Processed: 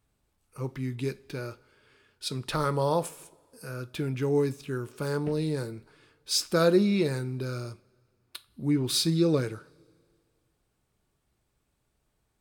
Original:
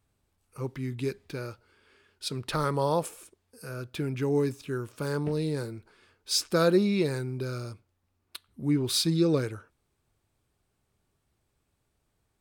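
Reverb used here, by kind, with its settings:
coupled-rooms reverb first 0.26 s, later 2 s, from −22 dB, DRR 12 dB

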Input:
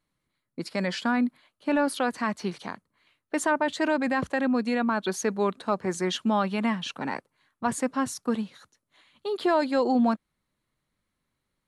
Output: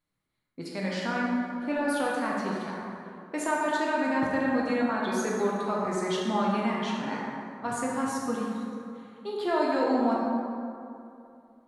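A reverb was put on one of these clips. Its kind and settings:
dense smooth reverb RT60 2.7 s, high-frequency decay 0.45×, DRR −4.5 dB
level −7 dB

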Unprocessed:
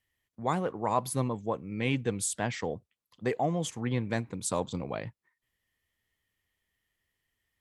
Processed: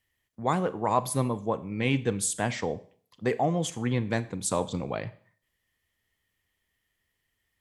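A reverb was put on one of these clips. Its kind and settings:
four-comb reverb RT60 0.5 s, combs from 29 ms, DRR 15 dB
level +3 dB

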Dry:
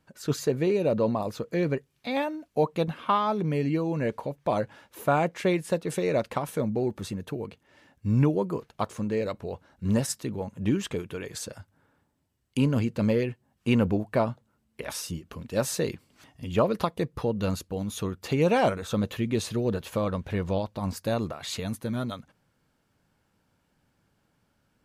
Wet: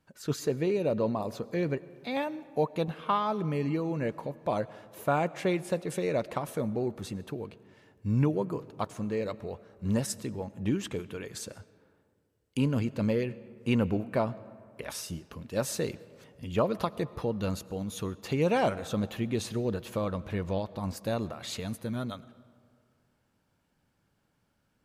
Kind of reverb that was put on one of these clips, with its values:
comb and all-pass reverb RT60 2.2 s, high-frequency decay 0.5×, pre-delay 65 ms, DRR 18.5 dB
level −3.5 dB

